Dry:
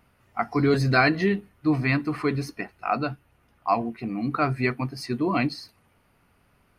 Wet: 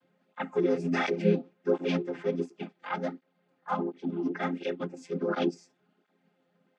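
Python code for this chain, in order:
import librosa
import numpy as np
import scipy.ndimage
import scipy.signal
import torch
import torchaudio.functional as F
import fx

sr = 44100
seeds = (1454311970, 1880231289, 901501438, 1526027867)

y = fx.chord_vocoder(x, sr, chord='minor triad', root=53)
y = fx.formant_shift(y, sr, semitones=5)
y = fx.flanger_cancel(y, sr, hz=1.4, depth_ms=5.5)
y = F.gain(torch.from_numpy(y), -1.5).numpy()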